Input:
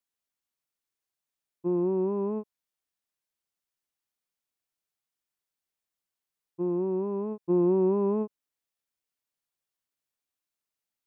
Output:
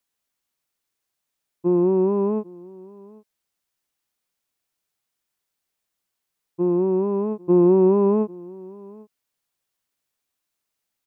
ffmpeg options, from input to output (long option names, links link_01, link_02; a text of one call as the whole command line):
ffmpeg -i in.wav -af "aecho=1:1:797:0.0708,volume=8dB" out.wav